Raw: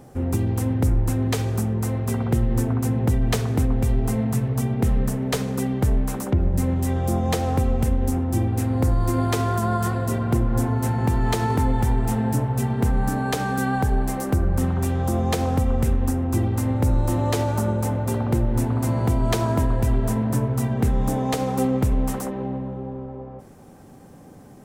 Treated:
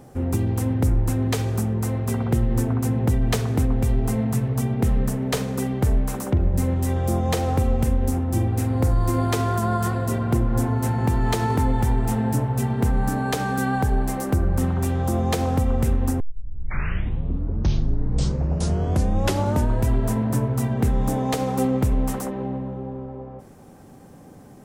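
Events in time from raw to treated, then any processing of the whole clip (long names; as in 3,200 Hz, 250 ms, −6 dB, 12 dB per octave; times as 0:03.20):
0:05.31–0:09.23: double-tracking delay 44 ms −13.5 dB
0:16.20: tape start 3.68 s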